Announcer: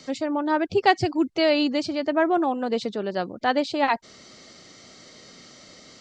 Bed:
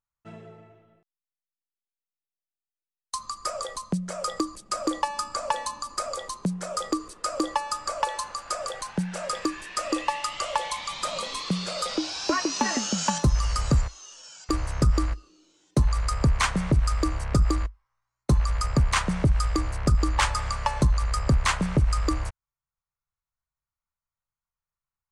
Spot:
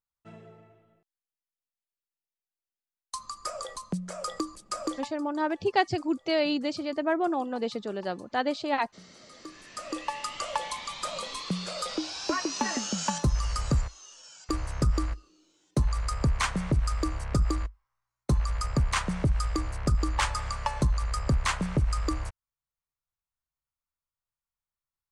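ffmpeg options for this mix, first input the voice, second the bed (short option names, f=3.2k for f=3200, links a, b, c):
-filter_complex "[0:a]adelay=4900,volume=-5.5dB[a];[1:a]volume=17.5dB,afade=t=out:st=4.86:d=0.27:silence=0.0841395,afade=t=in:st=9.31:d=1.03:silence=0.0794328[b];[a][b]amix=inputs=2:normalize=0"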